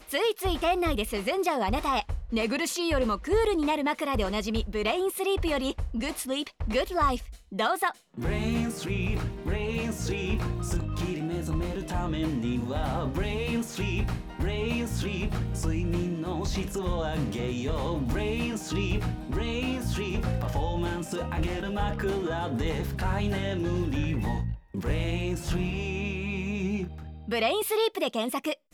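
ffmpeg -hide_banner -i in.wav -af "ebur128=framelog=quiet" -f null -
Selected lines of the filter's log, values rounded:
Integrated loudness:
  I:         -29.4 LUFS
  Threshold: -39.5 LUFS
Loudness range:
  LRA:         3.2 LU
  Threshold: -49.6 LUFS
  LRA low:   -30.6 LUFS
  LRA high:  -27.4 LUFS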